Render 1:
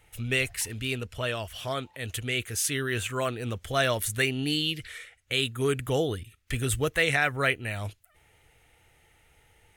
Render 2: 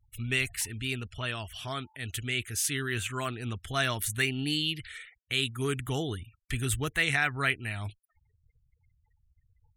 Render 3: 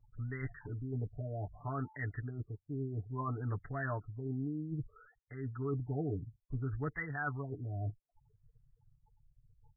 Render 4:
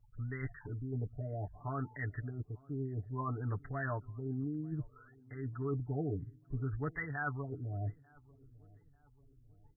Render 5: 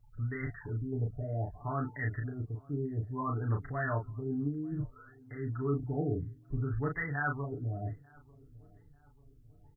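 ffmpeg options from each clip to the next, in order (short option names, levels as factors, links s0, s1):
-af "afftfilt=real='re*gte(hypot(re,im),0.00355)':imag='im*gte(hypot(re,im),0.00355)':win_size=1024:overlap=0.75,equalizer=f=530:w=3:g=-14,volume=0.841"
-af "aecho=1:1:6.9:0.85,areverse,acompressor=threshold=0.02:ratio=6,areverse,afftfilt=real='re*lt(b*sr/1024,730*pow(2100/730,0.5+0.5*sin(2*PI*0.61*pts/sr)))':imag='im*lt(b*sr/1024,730*pow(2100/730,0.5+0.5*sin(2*PI*0.61*pts/sr)))':win_size=1024:overlap=0.75,volume=1.12"
-filter_complex "[0:a]asplit=2[s0][s1];[s1]adelay=893,lowpass=f=830:p=1,volume=0.0668,asplit=2[s2][s3];[s3]adelay=893,lowpass=f=830:p=1,volume=0.55,asplit=2[s4][s5];[s5]adelay=893,lowpass=f=830:p=1,volume=0.55,asplit=2[s6][s7];[s7]adelay=893,lowpass=f=830:p=1,volume=0.55[s8];[s0][s2][s4][s6][s8]amix=inputs=5:normalize=0"
-filter_complex "[0:a]asplit=2[s0][s1];[s1]adelay=35,volume=0.631[s2];[s0][s2]amix=inputs=2:normalize=0,volume=1.41"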